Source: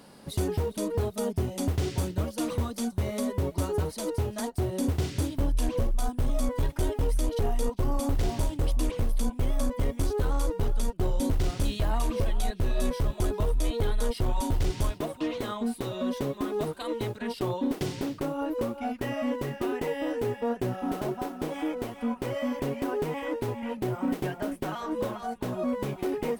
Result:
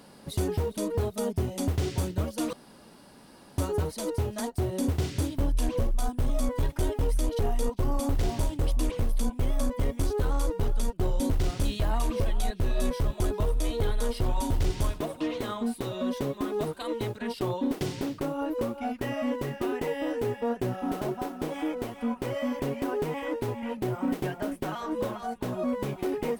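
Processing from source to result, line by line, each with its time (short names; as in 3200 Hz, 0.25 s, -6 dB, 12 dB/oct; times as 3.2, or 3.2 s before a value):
2.53–3.58 room tone
13.43–15.7 echo 88 ms -16.5 dB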